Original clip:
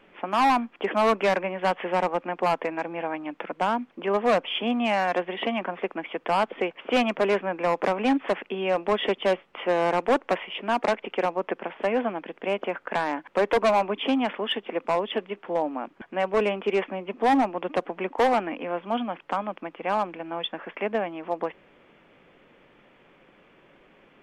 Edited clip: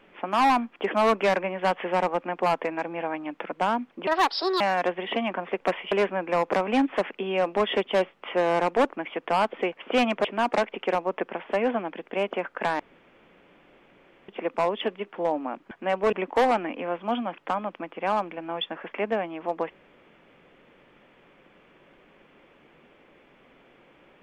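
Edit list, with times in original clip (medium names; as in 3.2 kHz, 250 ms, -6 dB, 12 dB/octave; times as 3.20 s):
4.07–4.91 s: speed 157%
5.91–7.23 s: swap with 10.24–10.55 s
13.10–14.59 s: room tone
16.43–17.95 s: delete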